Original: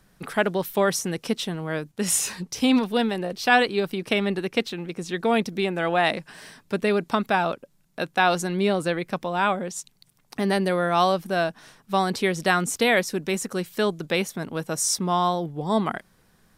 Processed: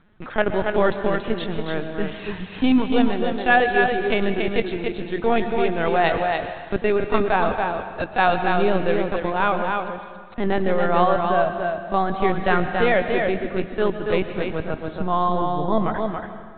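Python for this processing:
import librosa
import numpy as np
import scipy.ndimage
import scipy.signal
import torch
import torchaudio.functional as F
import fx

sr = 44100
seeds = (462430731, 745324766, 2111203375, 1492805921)

y = fx.lpc_vocoder(x, sr, seeds[0], excitation='pitch_kept', order=16)
y = fx.high_shelf(y, sr, hz=3000.0, db=fx.steps((0.0, -6.5), (10.52, -12.0)))
y = y + 10.0 ** (-4.5 / 20.0) * np.pad(y, (int(281 * sr / 1000.0), 0))[:len(y)]
y = fx.rev_plate(y, sr, seeds[1], rt60_s=1.7, hf_ratio=0.85, predelay_ms=105, drr_db=9.0)
y = y * 10.0 ** (2.5 / 20.0)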